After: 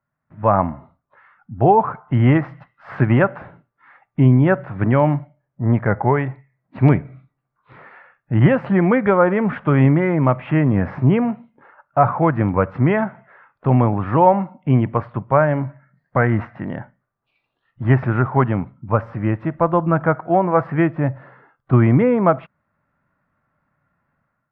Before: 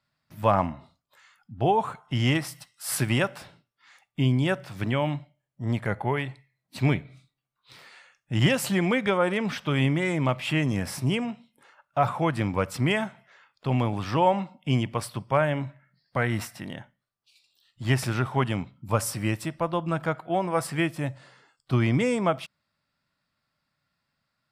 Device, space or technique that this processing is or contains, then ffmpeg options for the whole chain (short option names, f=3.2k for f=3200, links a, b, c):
action camera in a waterproof case: -af "lowpass=f=1.7k:w=0.5412,lowpass=f=1.7k:w=1.3066,dynaudnorm=f=150:g=5:m=11.5dB" -ar 44100 -c:a aac -b:a 128k